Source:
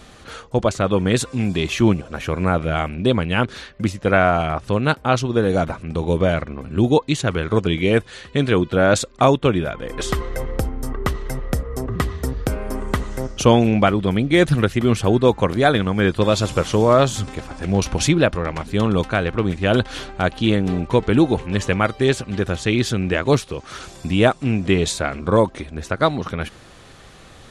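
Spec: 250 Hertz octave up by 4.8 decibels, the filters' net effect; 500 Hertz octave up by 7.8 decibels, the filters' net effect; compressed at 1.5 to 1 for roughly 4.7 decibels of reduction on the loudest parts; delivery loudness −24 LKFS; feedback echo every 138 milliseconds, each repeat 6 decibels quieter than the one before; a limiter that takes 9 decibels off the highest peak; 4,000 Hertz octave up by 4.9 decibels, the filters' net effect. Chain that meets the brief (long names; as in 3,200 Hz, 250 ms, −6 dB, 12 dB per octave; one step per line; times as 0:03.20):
parametric band 250 Hz +3.5 dB
parametric band 500 Hz +8.5 dB
parametric band 4,000 Hz +6 dB
downward compressor 1.5 to 1, threshold −16 dBFS
brickwall limiter −9 dBFS
repeating echo 138 ms, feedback 50%, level −6 dB
level −4.5 dB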